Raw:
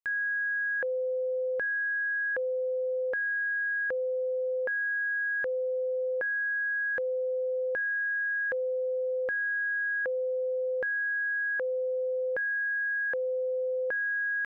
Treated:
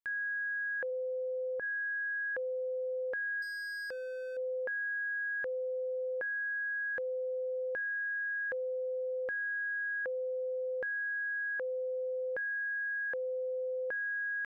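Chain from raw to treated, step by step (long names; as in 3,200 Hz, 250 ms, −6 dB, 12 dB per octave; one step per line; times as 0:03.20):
0:00.90–0:01.61: low-pass filter 1,100 Hz → 1,400 Hz 12 dB per octave
0:03.42–0:04.37: gain into a clipping stage and back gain 33 dB
level −5.5 dB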